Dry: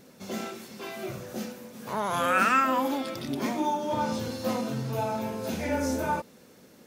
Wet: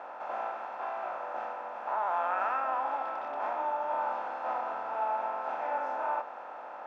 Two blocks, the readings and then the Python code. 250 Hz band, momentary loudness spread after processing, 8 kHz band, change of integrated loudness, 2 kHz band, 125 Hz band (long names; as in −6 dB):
−23.5 dB, 8 LU, below −25 dB, −4.5 dB, −7.5 dB, below −35 dB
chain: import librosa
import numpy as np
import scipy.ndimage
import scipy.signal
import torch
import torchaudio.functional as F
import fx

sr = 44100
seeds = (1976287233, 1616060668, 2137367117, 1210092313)

y = fx.bin_compress(x, sr, power=0.4)
y = fx.ladder_bandpass(y, sr, hz=840.0, resonance_pct=65)
y = fx.doubler(y, sr, ms=22.0, db=-11)